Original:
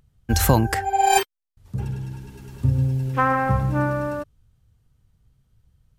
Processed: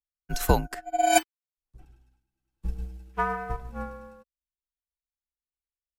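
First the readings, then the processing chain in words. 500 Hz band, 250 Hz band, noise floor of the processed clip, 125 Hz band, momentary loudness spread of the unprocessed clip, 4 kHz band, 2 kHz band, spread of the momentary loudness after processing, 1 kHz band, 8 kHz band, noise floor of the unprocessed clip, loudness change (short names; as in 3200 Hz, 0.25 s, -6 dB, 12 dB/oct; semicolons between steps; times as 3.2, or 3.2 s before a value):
-4.0 dB, -9.5 dB, under -85 dBFS, -14.5 dB, 16 LU, -5.5 dB, -6.5 dB, 17 LU, -6.5 dB, -4.5 dB, -69 dBFS, -6.5 dB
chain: frequency shift -72 Hz; low shelf 360 Hz -3 dB; upward expander 2.5:1, over -42 dBFS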